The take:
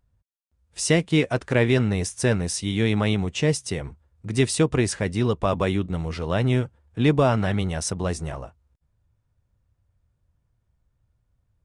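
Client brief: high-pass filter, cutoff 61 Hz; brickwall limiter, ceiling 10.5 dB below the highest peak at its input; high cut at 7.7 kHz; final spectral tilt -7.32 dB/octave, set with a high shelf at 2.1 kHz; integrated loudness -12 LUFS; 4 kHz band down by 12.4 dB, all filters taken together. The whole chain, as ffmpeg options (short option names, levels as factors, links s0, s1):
-af "highpass=61,lowpass=7700,highshelf=f=2100:g=-8,equalizer=f=4000:t=o:g=-9,volume=7.5,alimiter=limit=0.944:level=0:latency=1"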